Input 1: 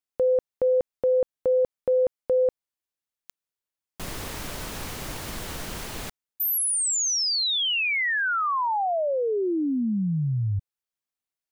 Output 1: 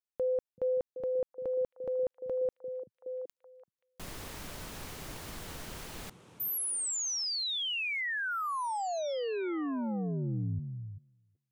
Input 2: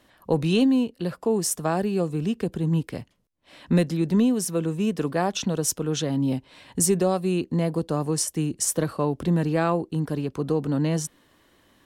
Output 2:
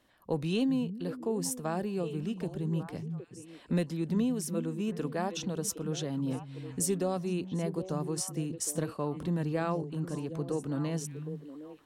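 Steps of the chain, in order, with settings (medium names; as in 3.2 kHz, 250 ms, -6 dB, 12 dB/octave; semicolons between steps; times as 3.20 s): repeats whose band climbs or falls 382 ms, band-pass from 150 Hz, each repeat 1.4 oct, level -5.5 dB; trim -9 dB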